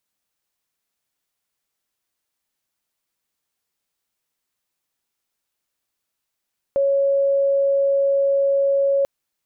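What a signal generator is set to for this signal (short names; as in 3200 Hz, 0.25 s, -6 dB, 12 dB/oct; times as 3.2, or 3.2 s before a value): tone sine 554 Hz -15 dBFS 2.29 s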